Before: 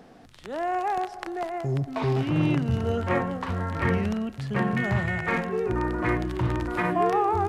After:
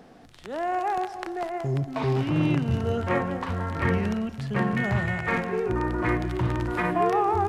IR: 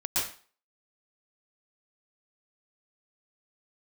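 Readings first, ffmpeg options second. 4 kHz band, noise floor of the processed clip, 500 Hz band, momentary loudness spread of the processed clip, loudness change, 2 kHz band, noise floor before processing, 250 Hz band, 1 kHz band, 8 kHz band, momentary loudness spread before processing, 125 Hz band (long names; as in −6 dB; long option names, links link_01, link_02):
0.0 dB, −49 dBFS, 0.0 dB, 6 LU, 0.0 dB, 0.0 dB, −49 dBFS, 0.0 dB, 0.0 dB, can't be measured, 7 LU, 0.0 dB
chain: -filter_complex "[0:a]asplit=2[link_01][link_02];[1:a]atrim=start_sample=2205,adelay=59[link_03];[link_02][link_03]afir=irnorm=-1:irlink=0,volume=-22dB[link_04];[link_01][link_04]amix=inputs=2:normalize=0"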